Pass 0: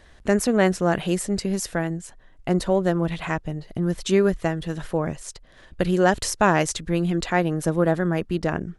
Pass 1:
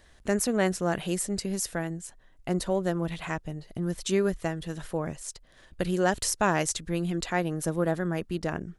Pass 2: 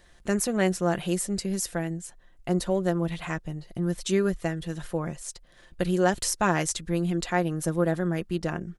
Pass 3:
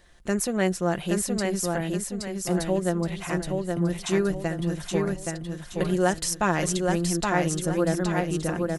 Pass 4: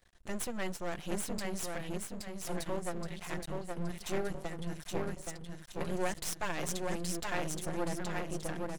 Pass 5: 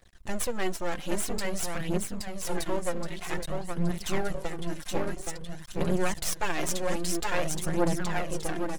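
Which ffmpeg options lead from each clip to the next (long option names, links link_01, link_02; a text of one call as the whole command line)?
ffmpeg -i in.wav -af "highshelf=frequency=5900:gain=9,volume=-6.5dB" out.wav
ffmpeg -i in.wav -af "aecho=1:1:5.7:0.39" out.wav
ffmpeg -i in.wav -af "aecho=1:1:822|1644|2466|3288|4110:0.668|0.254|0.0965|0.0367|0.0139" out.wav
ffmpeg -i in.wav -af "aeval=exprs='max(val(0),0)':channel_layout=same,volume=-5.5dB" out.wav
ffmpeg -i in.wav -af "aphaser=in_gain=1:out_gain=1:delay=3.9:decay=0.45:speed=0.51:type=triangular,volume=5.5dB" out.wav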